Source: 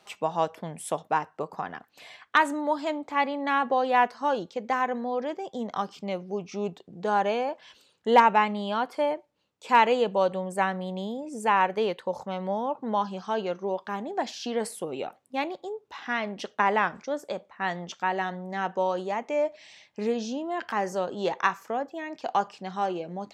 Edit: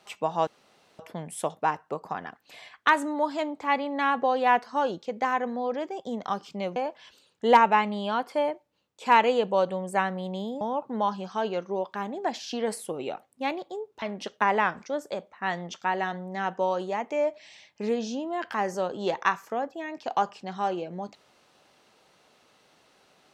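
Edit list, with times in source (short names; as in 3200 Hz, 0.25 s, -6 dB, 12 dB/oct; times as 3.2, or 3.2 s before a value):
0.47 insert room tone 0.52 s
6.24–7.39 cut
11.24–12.54 cut
15.95–16.2 cut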